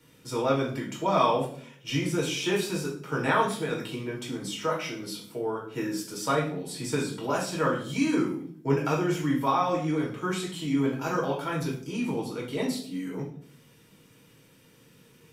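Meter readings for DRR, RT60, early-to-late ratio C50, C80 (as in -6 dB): -3.5 dB, 0.55 s, 6.5 dB, 11.0 dB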